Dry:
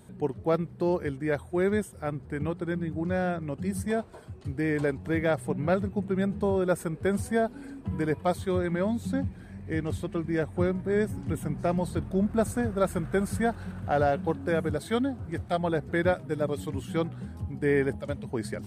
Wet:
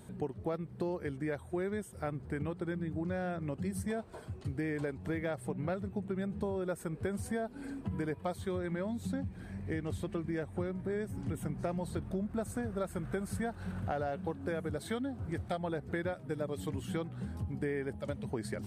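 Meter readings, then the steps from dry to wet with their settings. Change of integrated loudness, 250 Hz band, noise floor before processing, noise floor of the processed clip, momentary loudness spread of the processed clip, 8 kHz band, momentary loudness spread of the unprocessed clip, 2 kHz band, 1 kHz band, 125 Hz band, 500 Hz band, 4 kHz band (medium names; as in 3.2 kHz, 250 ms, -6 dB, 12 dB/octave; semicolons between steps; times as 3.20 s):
-8.5 dB, -8.0 dB, -46 dBFS, -50 dBFS, 3 LU, -6.5 dB, 7 LU, -9.0 dB, -9.5 dB, -6.5 dB, -9.5 dB, -7.5 dB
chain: compression, threshold -33 dBFS, peak gain reduction 13 dB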